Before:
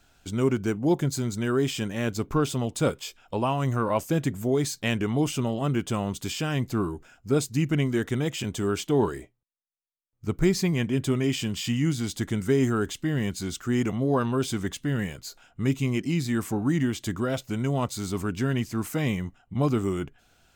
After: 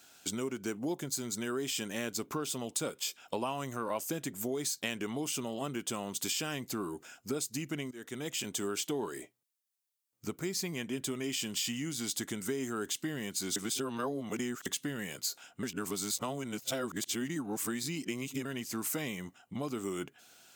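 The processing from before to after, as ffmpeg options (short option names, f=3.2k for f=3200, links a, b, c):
-filter_complex "[0:a]asplit=6[a][b][c][d][e][f];[a]atrim=end=7.91,asetpts=PTS-STARTPTS,afade=t=out:st=7.906:d=0.004:c=hsin:silence=0.1[g];[b]atrim=start=7.91:end=13.562,asetpts=PTS-STARTPTS,afade=t=in:d=1.15:silence=0.1[h];[c]atrim=start=13.558:end=14.662,asetpts=PTS-STARTPTS,areverse[i];[d]atrim=start=14.658:end=15.632[j];[e]atrim=start=15.628:end=18.452,asetpts=PTS-STARTPTS,areverse[k];[f]atrim=start=18.448[l];[g][h]concat=n=2:v=0:a=1[m];[m][i]acrossfade=d=0.004:c1=hsin:c2=hsin[n];[n][j]acrossfade=d=0.004:c1=hsin:c2=hsin[o];[o][k]acrossfade=d=0.004:c1=hsin:c2=hsin[p];[p][l]acrossfade=d=0.004:c1=hsin:c2=hsin,highshelf=f=3.8k:g=11,acompressor=threshold=-30dB:ratio=10,highpass=220"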